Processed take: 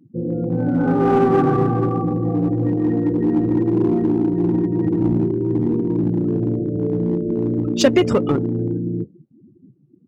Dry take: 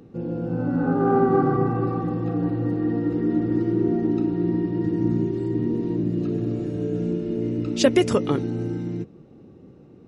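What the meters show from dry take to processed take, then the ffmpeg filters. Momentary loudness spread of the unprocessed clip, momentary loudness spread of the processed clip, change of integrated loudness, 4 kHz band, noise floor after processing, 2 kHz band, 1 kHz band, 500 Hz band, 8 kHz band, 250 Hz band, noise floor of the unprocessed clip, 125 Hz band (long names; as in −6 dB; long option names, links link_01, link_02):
8 LU, 6 LU, +4.5 dB, +3.0 dB, −53 dBFS, +3.0 dB, +3.5 dB, +4.0 dB, can't be measured, +4.5 dB, −48 dBFS, +4.5 dB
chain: -filter_complex "[0:a]afftdn=noise_reduction=35:noise_floor=-33,asplit=2[link_01][link_02];[link_02]aeval=exprs='0.1*(abs(mod(val(0)/0.1+3,4)-2)-1)':channel_layout=same,volume=-10dB[link_03];[link_01][link_03]amix=inputs=2:normalize=0,volume=3dB"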